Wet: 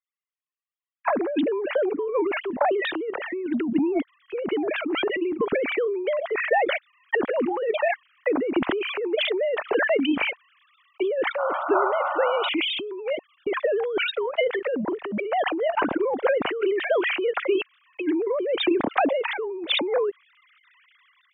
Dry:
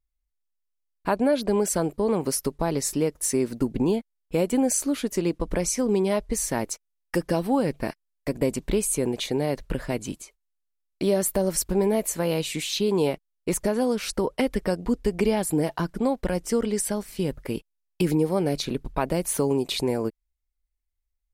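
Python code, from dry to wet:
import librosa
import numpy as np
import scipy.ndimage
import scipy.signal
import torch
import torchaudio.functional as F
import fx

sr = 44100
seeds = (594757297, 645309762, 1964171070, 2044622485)

y = fx.sine_speech(x, sr)
y = fx.over_compress(y, sr, threshold_db=-30.0, ratio=-1.0)
y = fx.transient(y, sr, attack_db=6, sustain_db=1)
y = fx.spec_paint(y, sr, seeds[0], shape='noise', start_s=11.38, length_s=1.11, low_hz=530.0, high_hz=1500.0, level_db=-30.0)
y = fx.sustainer(y, sr, db_per_s=34.0)
y = F.gain(torch.from_numpy(y), 1.5).numpy()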